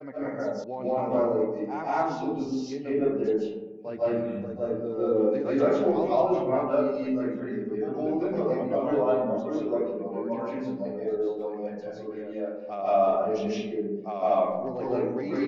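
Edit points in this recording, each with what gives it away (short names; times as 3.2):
0.64 sound cut off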